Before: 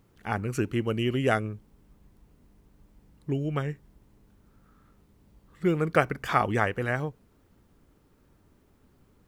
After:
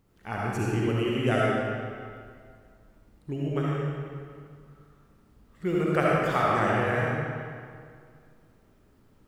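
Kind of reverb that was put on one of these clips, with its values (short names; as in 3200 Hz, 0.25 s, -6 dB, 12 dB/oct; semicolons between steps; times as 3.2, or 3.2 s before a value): digital reverb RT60 2.1 s, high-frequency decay 0.8×, pre-delay 25 ms, DRR -5.5 dB; gain -5 dB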